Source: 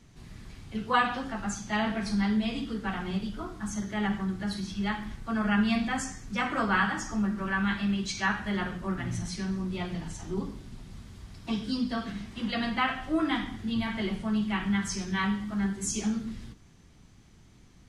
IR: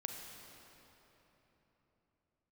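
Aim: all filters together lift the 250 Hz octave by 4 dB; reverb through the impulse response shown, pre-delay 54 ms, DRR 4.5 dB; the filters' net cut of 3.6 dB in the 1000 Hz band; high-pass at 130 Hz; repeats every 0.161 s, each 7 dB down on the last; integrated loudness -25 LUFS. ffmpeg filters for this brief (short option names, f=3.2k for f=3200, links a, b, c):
-filter_complex "[0:a]highpass=130,equalizer=f=250:t=o:g=6,equalizer=f=1k:t=o:g=-5,aecho=1:1:161|322|483|644|805:0.447|0.201|0.0905|0.0407|0.0183,asplit=2[a][b];[1:a]atrim=start_sample=2205,adelay=54[c];[b][c]afir=irnorm=-1:irlink=0,volume=-3.5dB[d];[a][d]amix=inputs=2:normalize=0,volume=0.5dB"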